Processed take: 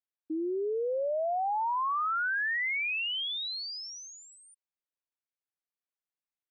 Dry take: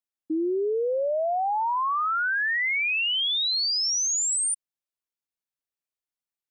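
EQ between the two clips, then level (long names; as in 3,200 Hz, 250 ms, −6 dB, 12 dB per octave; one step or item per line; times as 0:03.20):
high-frequency loss of the air 270 metres
low-shelf EQ 250 Hz −9.5 dB
−2.5 dB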